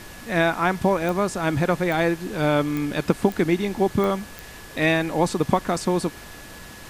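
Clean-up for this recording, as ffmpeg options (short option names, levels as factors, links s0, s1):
-af "adeclick=t=4,bandreject=f=1700:w=30,afftdn=nr=27:nf=-41"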